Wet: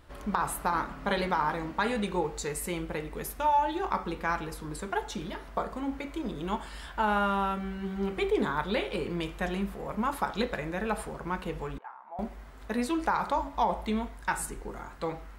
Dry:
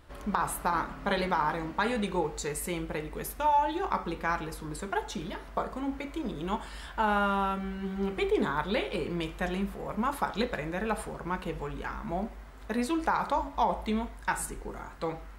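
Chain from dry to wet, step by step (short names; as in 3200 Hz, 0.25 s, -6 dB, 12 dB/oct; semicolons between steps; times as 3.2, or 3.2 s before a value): 11.78–12.19 ladder band-pass 930 Hz, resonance 60%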